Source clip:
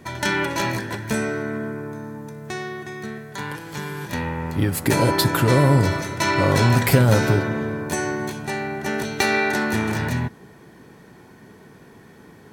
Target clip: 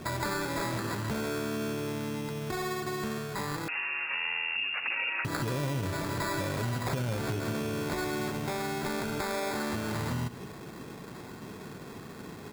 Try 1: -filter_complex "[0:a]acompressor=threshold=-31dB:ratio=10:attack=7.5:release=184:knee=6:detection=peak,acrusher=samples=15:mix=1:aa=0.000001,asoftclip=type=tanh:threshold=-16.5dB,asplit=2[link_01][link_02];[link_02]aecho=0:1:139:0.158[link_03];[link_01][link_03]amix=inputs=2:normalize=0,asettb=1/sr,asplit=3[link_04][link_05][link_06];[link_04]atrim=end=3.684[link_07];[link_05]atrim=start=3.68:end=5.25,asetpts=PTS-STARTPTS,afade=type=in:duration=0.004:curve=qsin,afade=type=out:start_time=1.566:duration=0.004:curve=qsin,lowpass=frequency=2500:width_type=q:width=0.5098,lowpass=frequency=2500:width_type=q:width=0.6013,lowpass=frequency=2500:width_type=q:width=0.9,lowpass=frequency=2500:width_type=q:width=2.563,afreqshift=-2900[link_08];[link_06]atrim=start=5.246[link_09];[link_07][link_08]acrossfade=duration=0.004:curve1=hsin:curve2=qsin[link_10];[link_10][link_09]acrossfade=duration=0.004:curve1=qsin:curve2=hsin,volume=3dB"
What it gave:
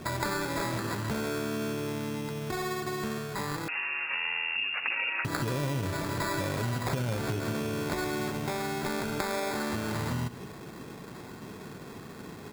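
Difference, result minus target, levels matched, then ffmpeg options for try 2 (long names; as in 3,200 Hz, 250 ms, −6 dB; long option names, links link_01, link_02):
soft clipping: distortion −7 dB
-filter_complex "[0:a]acompressor=threshold=-31dB:ratio=10:attack=7.5:release=184:knee=6:detection=peak,acrusher=samples=15:mix=1:aa=0.000001,asoftclip=type=tanh:threshold=-25dB,asplit=2[link_01][link_02];[link_02]aecho=0:1:139:0.158[link_03];[link_01][link_03]amix=inputs=2:normalize=0,asettb=1/sr,asplit=3[link_04][link_05][link_06];[link_04]atrim=end=3.684[link_07];[link_05]atrim=start=3.68:end=5.25,asetpts=PTS-STARTPTS,afade=type=in:duration=0.004:curve=qsin,afade=type=out:start_time=1.566:duration=0.004:curve=qsin,lowpass=frequency=2500:width_type=q:width=0.5098,lowpass=frequency=2500:width_type=q:width=0.6013,lowpass=frequency=2500:width_type=q:width=0.9,lowpass=frequency=2500:width_type=q:width=2.563,afreqshift=-2900[link_08];[link_06]atrim=start=5.246[link_09];[link_07][link_08]acrossfade=duration=0.004:curve1=hsin:curve2=qsin[link_10];[link_10][link_09]acrossfade=duration=0.004:curve1=qsin:curve2=hsin,volume=3dB"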